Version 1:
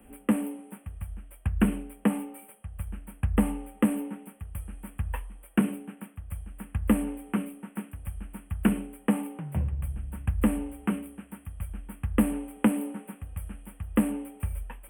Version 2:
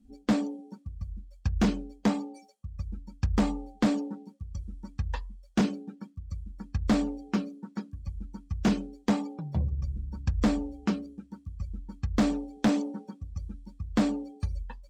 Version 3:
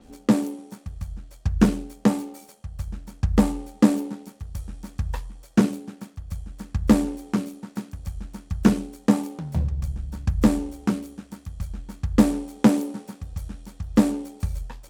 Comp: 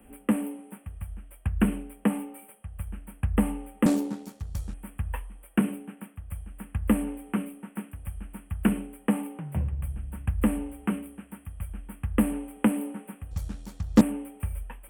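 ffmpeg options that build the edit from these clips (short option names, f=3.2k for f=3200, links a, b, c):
-filter_complex "[2:a]asplit=2[a][b];[0:a]asplit=3[c][d][e];[c]atrim=end=3.862[f];[a]atrim=start=3.858:end=4.742[g];[d]atrim=start=4.738:end=13.312[h];[b]atrim=start=13.308:end=14.012[i];[e]atrim=start=14.008[j];[f][g]acrossfade=d=0.004:c1=hsin:c2=hsin[k];[k][h]acrossfade=d=0.004:c1=hsin:c2=hsin[l];[l][i]acrossfade=d=0.004:c1=hsin:c2=hsin[m];[m][j]acrossfade=d=0.004:c1=hsin:c2=hsin"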